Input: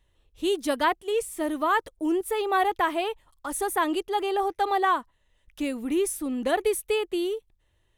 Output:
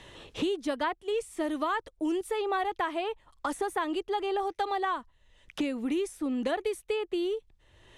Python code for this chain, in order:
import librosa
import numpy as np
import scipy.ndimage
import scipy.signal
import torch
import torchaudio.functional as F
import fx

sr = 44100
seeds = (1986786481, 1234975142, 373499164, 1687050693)

y = scipy.signal.sosfilt(scipy.signal.butter(2, 7000.0, 'lowpass', fs=sr, output='sos'), x)
y = fx.band_squash(y, sr, depth_pct=100)
y = F.gain(torch.from_numpy(y), -5.5).numpy()